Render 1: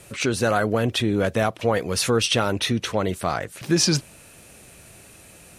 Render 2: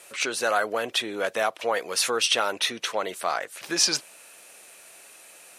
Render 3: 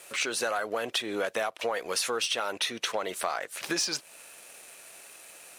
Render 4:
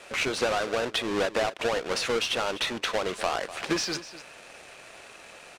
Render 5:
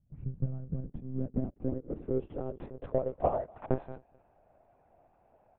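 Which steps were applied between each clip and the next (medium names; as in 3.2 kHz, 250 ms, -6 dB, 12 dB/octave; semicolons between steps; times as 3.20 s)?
high-pass 600 Hz 12 dB/octave
waveshaping leveller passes 1; compression 6:1, threshold -27 dBFS, peak gain reduction 12.5 dB
square wave that keeps the level; distance through air 75 m; delay 248 ms -15 dB
Chebyshev shaper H 3 -12 dB, 7 -33 dB, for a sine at -15.5 dBFS; monotone LPC vocoder at 8 kHz 130 Hz; low-pass sweep 140 Hz -> 720 Hz, 0.11–3.67 s; trim +2.5 dB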